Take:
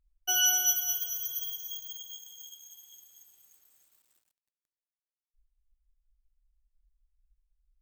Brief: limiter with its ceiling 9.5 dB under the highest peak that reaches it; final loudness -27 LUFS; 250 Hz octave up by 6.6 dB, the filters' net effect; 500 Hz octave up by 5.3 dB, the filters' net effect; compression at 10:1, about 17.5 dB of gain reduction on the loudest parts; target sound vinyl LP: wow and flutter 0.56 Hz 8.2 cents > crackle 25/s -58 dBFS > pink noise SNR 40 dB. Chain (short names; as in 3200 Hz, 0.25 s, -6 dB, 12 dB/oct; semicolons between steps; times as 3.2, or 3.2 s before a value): bell 250 Hz +4 dB; bell 500 Hz +8.5 dB; compressor 10:1, threshold -39 dBFS; limiter -36.5 dBFS; wow and flutter 0.56 Hz 8.2 cents; crackle 25/s -58 dBFS; pink noise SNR 40 dB; gain +17 dB